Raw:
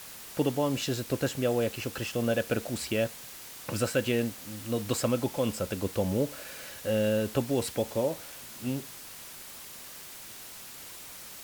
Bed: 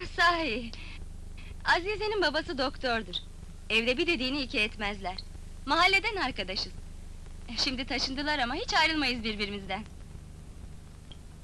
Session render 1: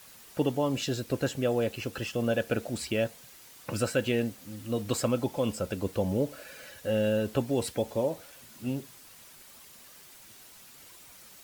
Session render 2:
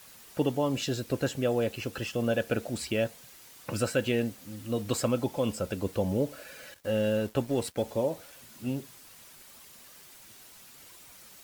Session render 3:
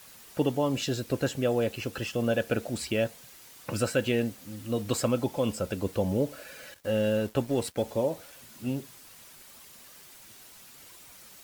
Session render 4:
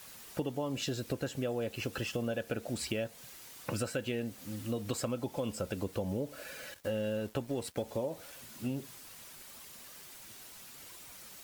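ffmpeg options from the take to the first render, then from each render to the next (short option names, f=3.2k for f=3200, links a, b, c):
-af "afftdn=nr=8:nf=-45"
-filter_complex "[0:a]asettb=1/sr,asplit=3[a][b][c];[a]atrim=end=6.744[d];[b]atrim=start=6.74:end=7.83,asetpts=PTS-STARTPTS,afade=t=in:d=0.004:c=qsin,afade=t=out:st=1.086:d=0.004:c=qsin,aeval=exprs='sgn(val(0))*max(abs(val(0))-0.00422,0)':c=same[e];[c]atrim=start=7.826[f];[d][e]acrossfade=d=0.004:c1=hsin:c2=qsin[g];[g][f]acrossfade=d=0.004:c1=qsin:c2=hsin"
-af "volume=1dB"
-af "acompressor=threshold=-32dB:ratio=5"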